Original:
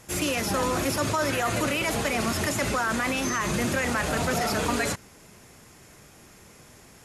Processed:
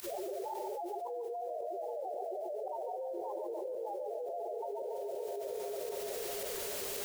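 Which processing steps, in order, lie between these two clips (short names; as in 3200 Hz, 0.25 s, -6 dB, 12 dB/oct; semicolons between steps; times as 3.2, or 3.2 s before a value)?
tape start at the beginning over 1.53 s; Doppler pass-by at 2.92, 15 m/s, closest 8.2 m; elliptic band-pass 380–880 Hz; limiter -33.5 dBFS, peak gain reduction 11 dB; loudest bins only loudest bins 2; added noise white -78 dBFS; pump 112 bpm, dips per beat 1, -24 dB, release 0.102 s; on a send: split-band echo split 590 Hz, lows 0.325 s, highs 0.143 s, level -5.5 dB; on the sum: spring tank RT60 3.7 s, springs 40 ms, chirp 50 ms, DRR 15 dB; fast leveller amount 100%; gain +1 dB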